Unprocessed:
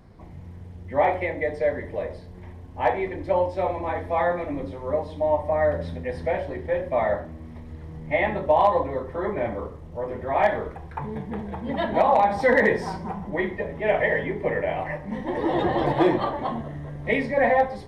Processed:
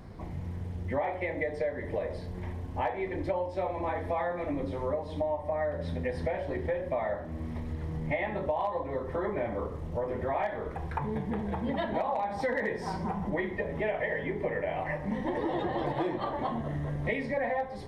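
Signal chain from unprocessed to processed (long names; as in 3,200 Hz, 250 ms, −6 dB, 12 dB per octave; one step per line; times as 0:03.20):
downward compressor 6 to 1, threshold −33 dBFS, peak gain reduction 17.5 dB
level +4 dB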